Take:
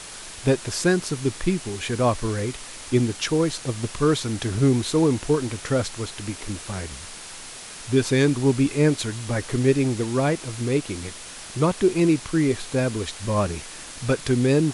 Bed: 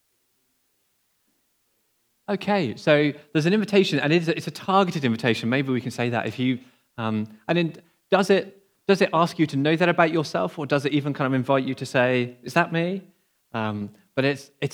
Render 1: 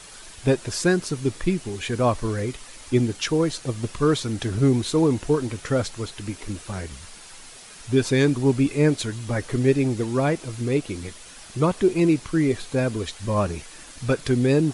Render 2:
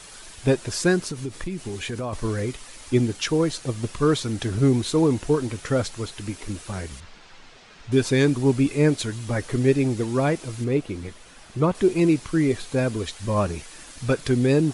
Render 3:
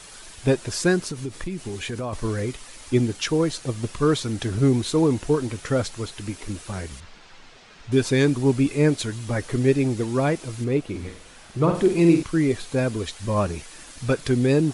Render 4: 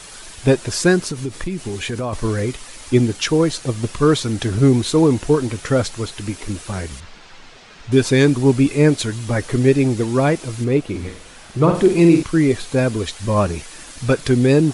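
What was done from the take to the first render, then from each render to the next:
noise reduction 7 dB, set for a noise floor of -39 dBFS
1.10–2.13 s: compression, threshold -26 dBFS; 7.00–7.92 s: distance through air 170 m; 10.64–11.75 s: treble shelf 3.6 kHz -10 dB
10.89–12.23 s: flutter echo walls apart 8.1 m, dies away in 0.45 s
trim +5.5 dB; peak limiter -3 dBFS, peak gain reduction 2 dB

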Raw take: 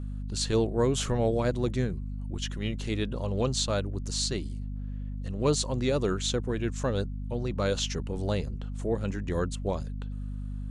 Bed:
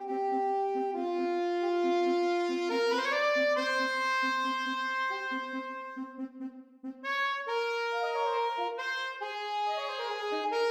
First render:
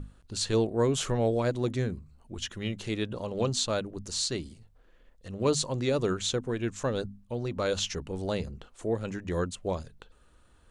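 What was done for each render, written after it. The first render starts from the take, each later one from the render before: hum notches 50/100/150/200/250 Hz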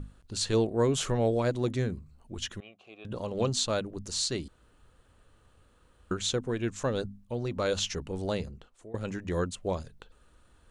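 2.60–3.05 s: vowel filter a; 4.48–6.11 s: room tone; 8.31–8.94 s: fade out, to -22 dB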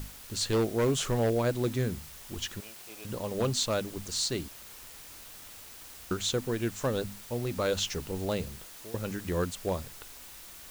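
wavefolder -20 dBFS; word length cut 8-bit, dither triangular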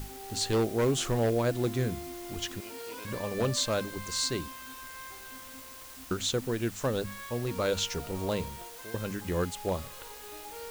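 add bed -14.5 dB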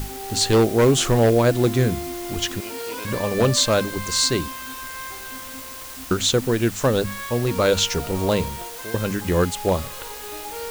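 trim +10.5 dB

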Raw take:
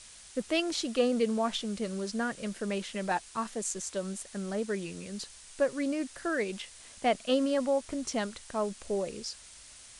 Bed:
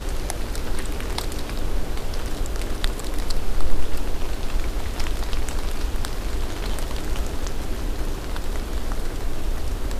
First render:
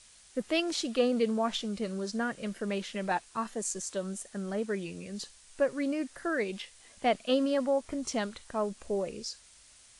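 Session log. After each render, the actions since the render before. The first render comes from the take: noise print and reduce 6 dB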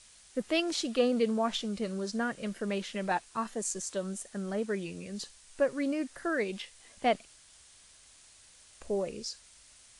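7.25–8.81 s: room tone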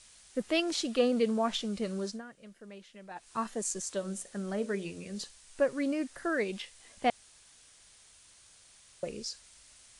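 2.06–3.31 s: dip -15.5 dB, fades 0.16 s; 3.99–5.24 s: hum notches 60/120/180/240/300/360/420/480/540/600 Hz; 7.10–9.03 s: room tone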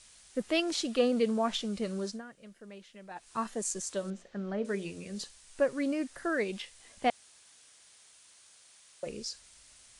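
4.10–4.65 s: distance through air 200 m; 7.08–9.05 s: high-pass 200 Hz -> 440 Hz 6 dB/octave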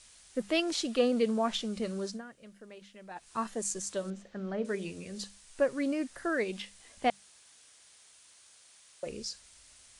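peaking EQ 68 Hz +3 dB; hum notches 50/100/150/200 Hz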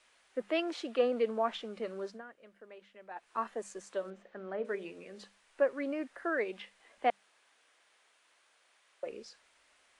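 three-band isolator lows -21 dB, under 300 Hz, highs -18 dB, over 2.8 kHz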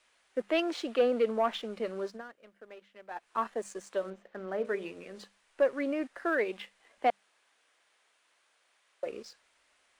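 waveshaping leveller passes 1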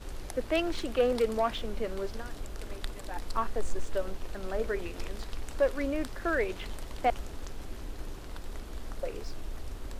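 add bed -13.5 dB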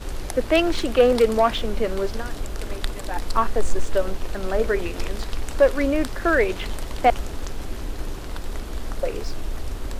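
trim +10 dB

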